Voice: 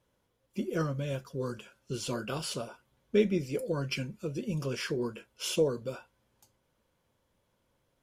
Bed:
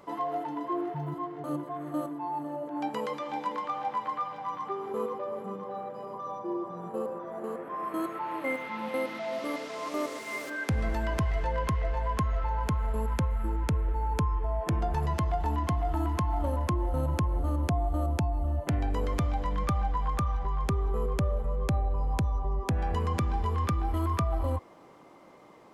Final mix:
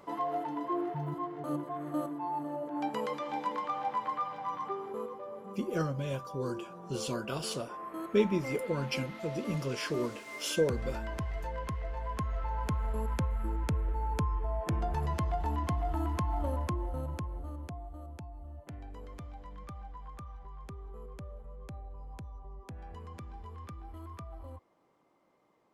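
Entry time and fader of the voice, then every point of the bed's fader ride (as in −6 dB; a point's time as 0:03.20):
5.00 s, −1.0 dB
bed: 0:04.66 −1.5 dB
0:05.11 −8 dB
0:11.87 −8 dB
0:12.75 −3.5 dB
0:16.54 −3.5 dB
0:17.98 −17 dB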